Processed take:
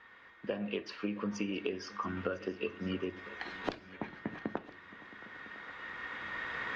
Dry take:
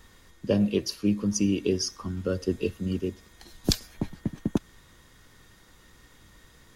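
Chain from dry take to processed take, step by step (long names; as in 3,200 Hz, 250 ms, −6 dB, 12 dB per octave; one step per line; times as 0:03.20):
camcorder AGC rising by 9 dB per second
low-pass filter 2,000 Hz 24 dB per octave
first difference
downward compressor 6 to 1, threshold −50 dBFS, peak gain reduction 14 dB
echo machine with several playback heads 335 ms, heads second and third, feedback 46%, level −20 dB
on a send at −12.5 dB: convolution reverb RT60 0.35 s, pre-delay 4 ms
on the sum: level +17.5 dB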